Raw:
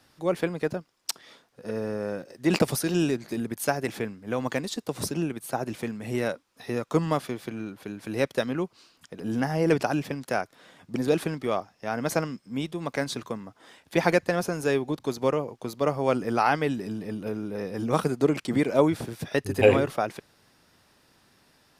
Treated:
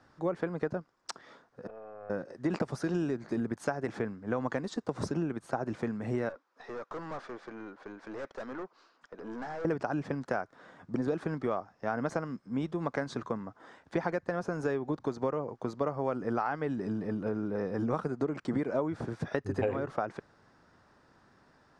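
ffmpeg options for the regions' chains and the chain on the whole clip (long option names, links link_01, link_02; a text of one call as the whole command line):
ffmpeg -i in.wav -filter_complex "[0:a]asettb=1/sr,asplit=3[link_01][link_02][link_03];[link_01]atrim=end=1.674[link_04];[link_02]atrim=start=1.67:end=2.1,asetpts=PTS-STARTPTS,afade=type=in:duration=0.004:curve=qsin,afade=type=out:start_time=0.426:duration=0.004:curve=qsin,asplit=3[link_05][link_06][link_07];[link_05]bandpass=frequency=730:width_type=q:width=8,volume=0dB[link_08];[link_06]bandpass=frequency=1090:width_type=q:width=8,volume=-6dB[link_09];[link_07]bandpass=frequency=2440:width_type=q:width=8,volume=-9dB[link_10];[link_08][link_09][link_10]amix=inputs=3:normalize=0,aeval=exprs='(tanh(70.8*val(0)+0.45)-tanh(0.45))/70.8':channel_layout=same[link_11];[link_03]atrim=start=2.096[link_12];[link_04][link_11]acrossfade=duration=0.004:curve1=hsin:curve2=qsin[link_13];[link_13][link_12]acrossfade=duration=0.004:curve1=qsin:curve2=hsin,asettb=1/sr,asplit=3[link_14][link_15][link_16];[link_14]atrim=end=6.294[link_17];[link_15]atrim=start=6.29:end=9.65,asetpts=PTS-STARTPTS,afade=type=in:duration=0.004:curve=qsin,afade=type=out:start_time=3.356:duration=0.004:curve=qsin,highpass=400,lowpass=6400,aeval=exprs='(tanh(70.8*val(0)+0.3)-tanh(0.3))/70.8':channel_layout=same[link_18];[link_16]atrim=start=9.646[link_19];[link_17][link_18]acrossfade=duration=0.004:curve1=hsin:curve2=qsin[link_20];[link_20][link_19]acrossfade=duration=0.004:curve1=qsin:curve2=hsin,lowpass=frequency=7500:width=0.5412,lowpass=frequency=7500:width=1.3066,highshelf=frequency=2000:width_type=q:width=1.5:gain=-9,acompressor=threshold=-27dB:ratio=10" out.wav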